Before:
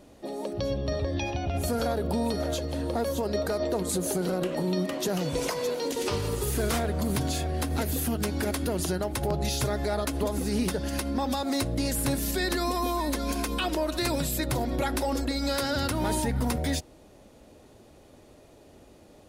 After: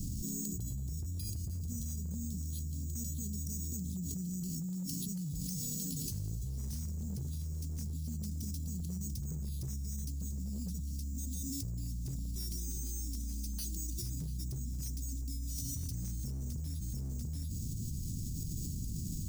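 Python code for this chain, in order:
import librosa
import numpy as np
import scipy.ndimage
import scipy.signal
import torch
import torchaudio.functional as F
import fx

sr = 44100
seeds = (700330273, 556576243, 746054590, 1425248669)

y = np.repeat(scipy.signal.resample_poly(x, 1, 6), 6)[:len(x)]
y = scipy.signal.sosfilt(scipy.signal.cheby1(3, 1.0, [170.0, 5600.0], 'bandstop', fs=sr, output='sos'), y)
y = np.clip(y, -10.0 ** (-28.0 / 20.0), 10.0 ** (-28.0 / 20.0))
y = y + 10.0 ** (-14.0 / 20.0) * np.pad(y, (int(691 * sr / 1000.0), 0))[:len(y)]
y = fx.env_flatten(y, sr, amount_pct=100)
y = F.gain(torch.from_numpy(y), -8.5).numpy()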